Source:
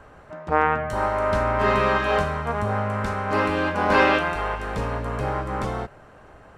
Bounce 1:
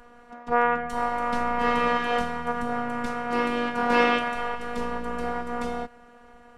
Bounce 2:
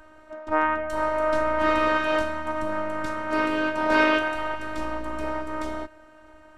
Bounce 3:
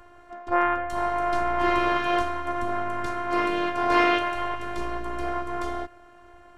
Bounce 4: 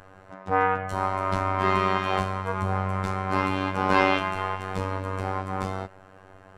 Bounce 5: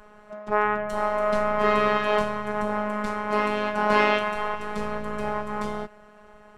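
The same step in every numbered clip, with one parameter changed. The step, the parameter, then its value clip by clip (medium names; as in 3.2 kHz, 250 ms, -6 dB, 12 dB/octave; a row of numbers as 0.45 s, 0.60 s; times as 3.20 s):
robot voice, frequency: 240 Hz, 310 Hz, 350 Hz, 95 Hz, 210 Hz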